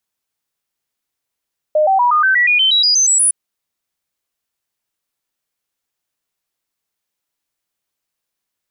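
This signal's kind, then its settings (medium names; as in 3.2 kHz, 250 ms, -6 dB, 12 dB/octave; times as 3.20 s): stepped sine 612 Hz up, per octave 3, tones 13, 0.12 s, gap 0.00 s -9.5 dBFS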